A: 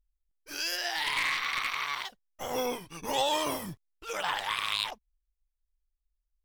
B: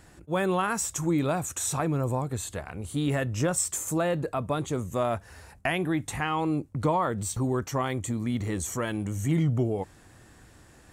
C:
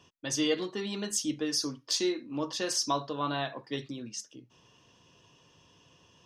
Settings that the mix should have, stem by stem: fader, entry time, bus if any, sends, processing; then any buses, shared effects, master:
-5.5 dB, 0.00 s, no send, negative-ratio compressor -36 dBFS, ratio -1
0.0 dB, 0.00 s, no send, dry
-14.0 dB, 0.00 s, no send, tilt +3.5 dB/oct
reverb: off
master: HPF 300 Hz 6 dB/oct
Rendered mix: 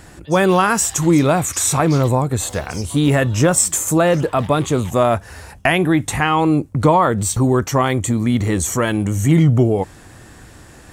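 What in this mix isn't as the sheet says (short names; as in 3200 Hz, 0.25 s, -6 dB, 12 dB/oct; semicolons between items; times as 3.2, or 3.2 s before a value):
stem B 0.0 dB -> +12.0 dB; master: missing HPF 300 Hz 6 dB/oct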